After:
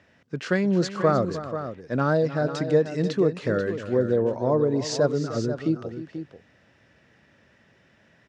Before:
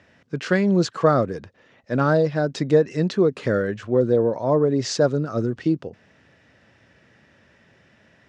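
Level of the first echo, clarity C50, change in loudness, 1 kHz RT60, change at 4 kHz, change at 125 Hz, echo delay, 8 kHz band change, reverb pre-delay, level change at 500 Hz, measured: −13.5 dB, no reverb audible, −3.5 dB, no reverb audible, −3.0 dB, −3.0 dB, 307 ms, −3.0 dB, no reverb audible, −3.0 dB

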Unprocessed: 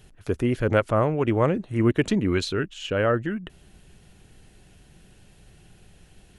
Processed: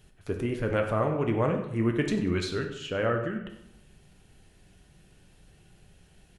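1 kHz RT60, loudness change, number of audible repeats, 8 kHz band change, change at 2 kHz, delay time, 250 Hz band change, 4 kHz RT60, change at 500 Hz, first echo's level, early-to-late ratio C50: 0.80 s, −4.5 dB, 1, −5.0 dB, −4.5 dB, 95 ms, −5.0 dB, 0.60 s, −4.5 dB, −14.5 dB, 7.0 dB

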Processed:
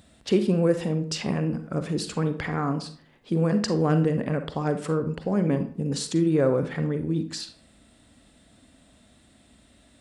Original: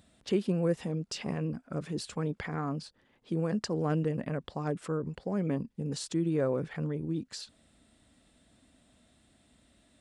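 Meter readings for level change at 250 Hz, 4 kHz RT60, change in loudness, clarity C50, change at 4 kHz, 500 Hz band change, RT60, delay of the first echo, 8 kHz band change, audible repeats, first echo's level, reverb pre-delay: +7.5 dB, 0.35 s, +7.5 dB, 10.0 dB, +7.5 dB, +7.5 dB, 0.50 s, no echo audible, +7.5 dB, no echo audible, no echo audible, 38 ms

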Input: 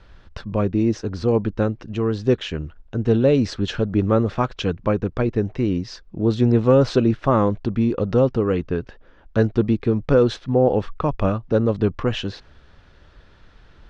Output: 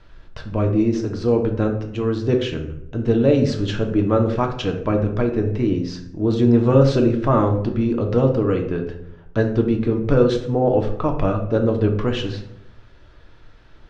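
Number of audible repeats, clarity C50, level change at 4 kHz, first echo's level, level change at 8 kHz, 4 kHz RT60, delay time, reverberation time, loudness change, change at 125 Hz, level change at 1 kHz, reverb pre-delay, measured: no echo audible, 8.0 dB, 0.0 dB, no echo audible, can't be measured, 0.45 s, no echo audible, 0.75 s, +1.0 dB, +1.5 dB, +0.5 dB, 3 ms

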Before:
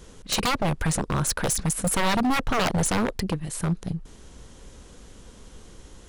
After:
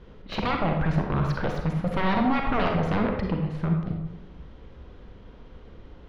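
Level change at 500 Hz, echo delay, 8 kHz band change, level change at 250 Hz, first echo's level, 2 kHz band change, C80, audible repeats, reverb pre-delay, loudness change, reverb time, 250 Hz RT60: +0.5 dB, no echo audible, below −30 dB, +1.0 dB, no echo audible, −2.5 dB, 6.0 dB, no echo audible, 36 ms, −1.0 dB, 0.95 s, 1.0 s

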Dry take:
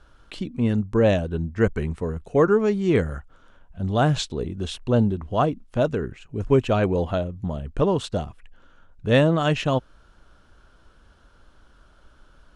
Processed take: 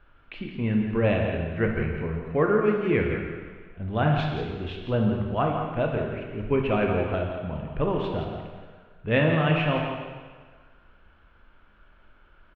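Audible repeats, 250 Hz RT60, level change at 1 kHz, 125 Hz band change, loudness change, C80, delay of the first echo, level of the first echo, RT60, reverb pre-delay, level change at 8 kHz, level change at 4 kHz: 1, 1.4 s, −1.5 dB, −2.5 dB, −3.0 dB, 3.5 dB, 170 ms, −8.5 dB, 1.6 s, 15 ms, below −25 dB, −5.0 dB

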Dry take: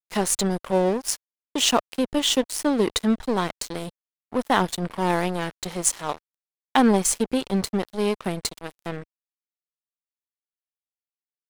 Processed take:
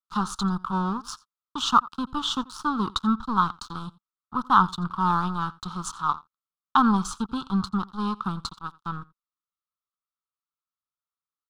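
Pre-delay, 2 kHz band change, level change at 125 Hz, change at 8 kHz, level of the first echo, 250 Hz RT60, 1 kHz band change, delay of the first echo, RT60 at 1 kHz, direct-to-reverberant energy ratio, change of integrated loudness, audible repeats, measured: no reverb audible, −4.0 dB, 0.0 dB, −14.0 dB, −22.5 dB, no reverb audible, +3.5 dB, 86 ms, no reverb audible, no reverb audible, −2.0 dB, 1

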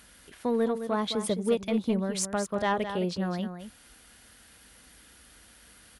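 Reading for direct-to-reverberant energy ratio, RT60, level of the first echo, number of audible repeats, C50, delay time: no reverb audible, no reverb audible, −9.5 dB, 1, no reverb audible, 213 ms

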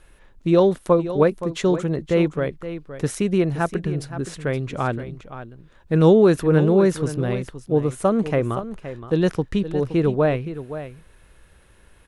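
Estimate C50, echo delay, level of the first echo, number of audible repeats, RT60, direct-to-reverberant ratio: no reverb audible, 520 ms, −12.5 dB, 1, no reverb audible, no reverb audible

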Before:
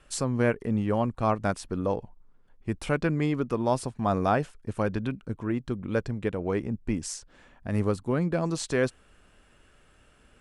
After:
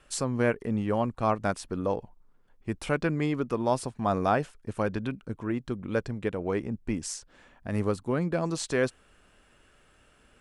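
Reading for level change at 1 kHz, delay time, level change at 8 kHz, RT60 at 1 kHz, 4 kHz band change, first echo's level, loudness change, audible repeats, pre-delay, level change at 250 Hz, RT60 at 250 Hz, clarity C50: 0.0 dB, no echo audible, 0.0 dB, no reverb audible, 0.0 dB, no echo audible, −1.0 dB, no echo audible, no reverb audible, −1.5 dB, no reverb audible, no reverb audible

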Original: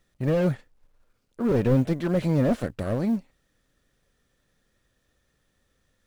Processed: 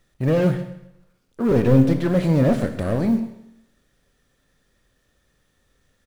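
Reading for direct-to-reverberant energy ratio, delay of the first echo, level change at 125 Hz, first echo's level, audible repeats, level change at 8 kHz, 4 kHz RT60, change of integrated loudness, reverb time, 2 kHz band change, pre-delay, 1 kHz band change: 7.5 dB, 131 ms, +5.5 dB, −17.0 dB, 1, can't be measured, 0.80 s, +5.0 dB, 0.80 s, +5.0 dB, 22 ms, +4.5 dB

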